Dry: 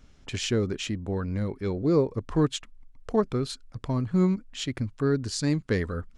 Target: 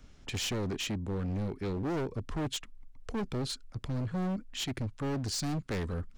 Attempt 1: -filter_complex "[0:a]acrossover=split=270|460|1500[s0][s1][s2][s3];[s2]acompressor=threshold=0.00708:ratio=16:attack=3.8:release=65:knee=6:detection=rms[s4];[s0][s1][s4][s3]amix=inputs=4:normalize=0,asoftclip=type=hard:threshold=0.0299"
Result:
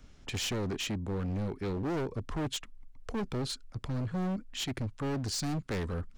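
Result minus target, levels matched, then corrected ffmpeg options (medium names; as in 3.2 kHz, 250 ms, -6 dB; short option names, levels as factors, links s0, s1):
compression: peak gain reduction -7 dB
-filter_complex "[0:a]acrossover=split=270|460|1500[s0][s1][s2][s3];[s2]acompressor=threshold=0.00299:ratio=16:attack=3.8:release=65:knee=6:detection=rms[s4];[s0][s1][s4][s3]amix=inputs=4:normalize=0,asoftclip=type=hard:threshold=0.0299"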